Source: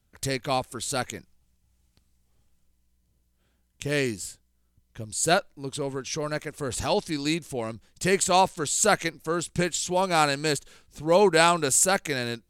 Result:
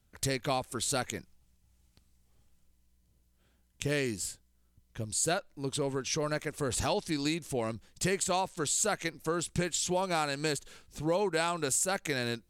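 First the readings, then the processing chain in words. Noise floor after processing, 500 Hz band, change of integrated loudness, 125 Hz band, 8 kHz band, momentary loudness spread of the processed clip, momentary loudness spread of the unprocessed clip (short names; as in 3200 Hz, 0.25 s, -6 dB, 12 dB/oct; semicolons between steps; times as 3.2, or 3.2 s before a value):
-70 dBFS, -7.0 dB, -7.0 dB, -4.0 dB, -5.5 dB, 9 LU, 13 LU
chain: compressor 6:1, threshold -27 dBFS, peak gain reduction 12 dB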